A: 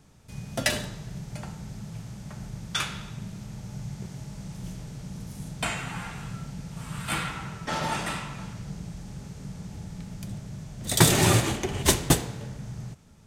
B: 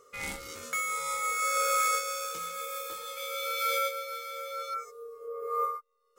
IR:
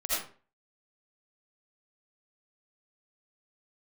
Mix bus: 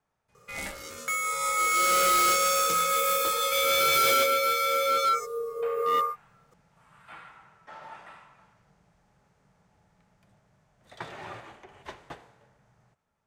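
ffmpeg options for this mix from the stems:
-filter_complex "[0:a]acrossover=split=5100[a][b];[b]acompressor=threshold=-45dB:ratio=4:attack=1:release=60[c];[a][c]amix=inputs=2:normalize=0,acrossover=split=530 2100:gain=0.141 1 0.2[d][e][f];[d][e][f]amix=inputs=3:normalize=0,volume=-12.5dB[g];[1:a]dynaudnorm=f=340:g=9:m=15dB,asoftclip=type=hard:threshold=-20.5dB,adelay=350,volume=0dB[h];[g][h]amix=inputs=2:normalize=0"

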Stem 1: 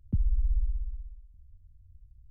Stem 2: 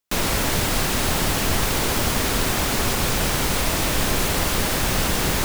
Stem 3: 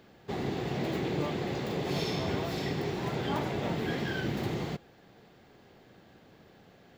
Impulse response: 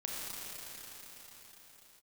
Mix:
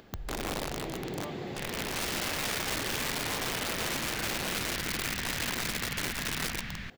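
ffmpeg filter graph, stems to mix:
-filter_complex "[0:a]tremolo=f=100:d=0.333,volume=-8.5dB,asplit=3[a][b][c];[b]volume=-23dB[d];[c]volume=-22dB[e];[1:a]dynaudnorm=f=110:g=9:m=7.5dB,firequalizer=gain_entry='entry(230,0);entry(340,-25);entry(1800,1);entry(8900,-28)':delay=0.05:min_phase=1,adelay=1450,volume=-13dB[f];[2:a]lowshelf=f=190:g=2.5,acompressor=mode=upward:threshold=-43dB:ratio=2.5,volume=-5.5dB,asplit=2[g][h];[h]volume=-18dB[i];[3:a]atrim=start_sample=2205[j];[d][i]amix=inputs=2:normalize=0[k];[k][j]afir=irnorm=-1:irlink=0[l];[e]aecho=0:1:272:1[m];[a][f][g][l][m]amix=inputs=5:normalize=0,aeval=exprs='(mod(22.4*val(0)+1,2)-1)/22.4':c=same,lowshelf=f=140:g=-5"

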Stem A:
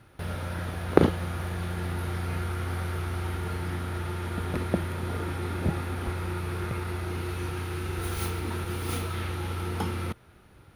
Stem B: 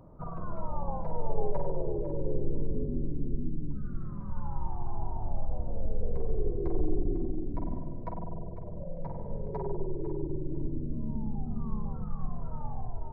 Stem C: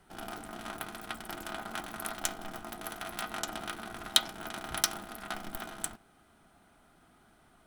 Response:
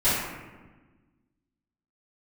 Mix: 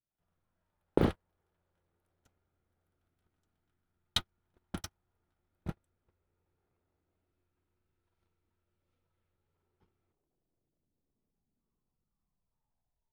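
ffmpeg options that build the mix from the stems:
-filter_complex "[0:a]lowpass=5.6k,volume=-3.5dB[a];[1:a]aeval=exprs='0.0282*(abs(mod(val(0)/0.0282+3,4)-2)-1)':c=same,volume=0dB[b];[2:a]acrossover=split=140[c][d];[c]acompressor=threshold=-51dB:ratio=6[e];[e][d]amix=inputs=2:normalize=0,volume=-3dB[f];[a][b][f]amix=inputs=3:normalize=0,agate=range=-49dB:threshold=-24dB:ratio=16:detection=peak,alimiter=limit=-10.5dB:level=0:latency=1:release=132"

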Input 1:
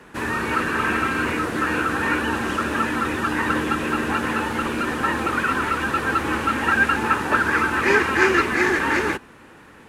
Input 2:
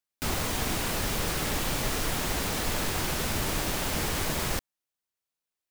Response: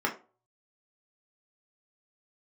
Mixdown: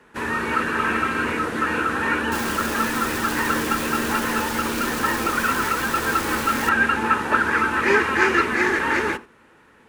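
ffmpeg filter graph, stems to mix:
-filter_complex "[0:a]volume=-2dB,asplit=2[a][b];[b]volume=-18.5dB[c];[1:a]aeval=exprs='(mod(18.8*val(0)+1,2)-1)/18.8':c=same,adelay=2100,volume=-0.5dB[d];[2:a]atrim=start_sample=2205[e];[c][e]afir=irnorm=-1:irlink=0[f];[a][d][f]amix=inputs=3:normalize=0,agate=range=-6dB:threshold=-35dB:ratio=16:detection=peak,highshelf=f=12k:g=-3.5"

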